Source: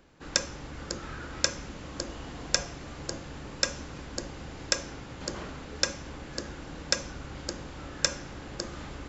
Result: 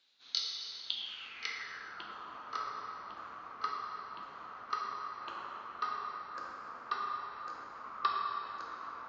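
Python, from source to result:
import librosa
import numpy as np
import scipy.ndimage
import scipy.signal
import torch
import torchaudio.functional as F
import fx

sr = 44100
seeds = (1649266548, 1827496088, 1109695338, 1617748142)

y = fx.pitch_ramps(x, sr, semitones=-9.0, every_ms=1057)
y = fx.rev_plate(y, sr, seeds[0], rt60_s=2.9, hf_ratio=0.75, predelay_ms=0, drr_db=-2.0)
y = fx.filter_sweep_bandpass(y, sr, from_hz=3900.0, to_hz=1200.0, start_s=0.83, end_s=2.2, q=5.9)
y = y * 10.0 ** (5.5 / 20.0)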